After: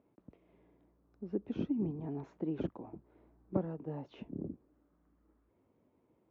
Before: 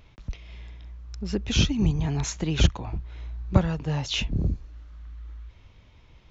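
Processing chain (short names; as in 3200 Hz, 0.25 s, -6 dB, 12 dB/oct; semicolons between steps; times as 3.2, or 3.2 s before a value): ladder band-pass 370 Hz, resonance 30%; gain +4 dB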